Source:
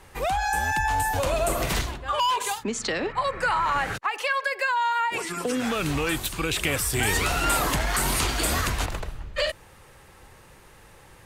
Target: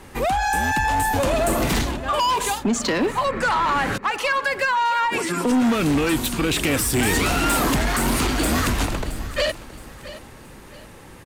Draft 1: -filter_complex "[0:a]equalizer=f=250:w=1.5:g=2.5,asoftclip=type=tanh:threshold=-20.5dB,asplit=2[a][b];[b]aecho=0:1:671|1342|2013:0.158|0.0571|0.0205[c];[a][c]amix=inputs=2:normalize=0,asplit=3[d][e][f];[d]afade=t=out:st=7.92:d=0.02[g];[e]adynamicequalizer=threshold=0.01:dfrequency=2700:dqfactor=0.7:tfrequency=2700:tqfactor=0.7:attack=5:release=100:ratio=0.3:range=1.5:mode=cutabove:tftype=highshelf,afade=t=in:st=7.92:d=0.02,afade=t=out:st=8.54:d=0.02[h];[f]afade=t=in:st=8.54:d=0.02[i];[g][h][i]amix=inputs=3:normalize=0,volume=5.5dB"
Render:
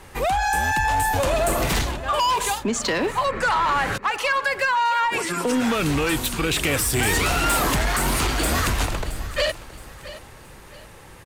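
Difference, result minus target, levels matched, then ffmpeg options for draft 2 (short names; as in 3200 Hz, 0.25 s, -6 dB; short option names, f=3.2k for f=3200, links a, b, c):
250 Hz band -4.0 dB
-filter_complex "[0:a]equalizer=f=250:w=1.5:g=10.5,asoftclip=type=tanh:threshold=-20.5dB,asplit=2[a][b];[b]aecho=0:1:671|1342|2013:0.158|0.0571|0.0205[c];[a][c]amix=inputs=2:normalize=0,asplit=3[d][e][f];[d]afade=t=out:st=7.92:d=0.02[g];[e]adynamicequalizer=threshold=0.01:dfrequency=2700:dqfactor=0.7:tfrequency=2700:tqfactor=0.7:attack=5:release=100:ratio=0.3:range=1.5:mode=cutabove:tftype=highshelf,afade=t=in:st=7.92:d=0.02,afade=t=out:st=8.54:d=0.02[h];[f]afade=t=in:st=8.54:d=0.02[i];[g][h][i]amix=inputs=3:normalize=0,volume=5.5dB"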